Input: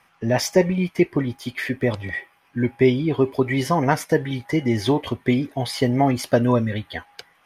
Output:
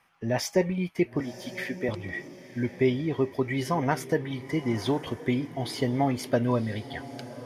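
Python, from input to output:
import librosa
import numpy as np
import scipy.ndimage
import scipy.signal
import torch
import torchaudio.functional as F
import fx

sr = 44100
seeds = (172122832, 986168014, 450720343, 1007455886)

p1 = fx.highpass(x, sr, hz=210.0, slope=12, at=(1.2, 1.89))
p2 = p1 + fx.echo_diffused(p1, sr, ms=1037, feedback_pct=43, wet_db=-14.5, dry=0)
y = F.gain(torch.from_numpy(p2), -7.0).numpy()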